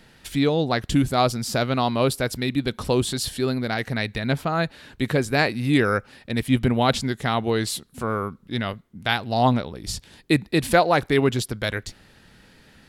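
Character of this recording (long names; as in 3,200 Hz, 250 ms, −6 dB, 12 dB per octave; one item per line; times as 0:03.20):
background noise floor −54 dBFS
spectral slope −4.5 dB per octave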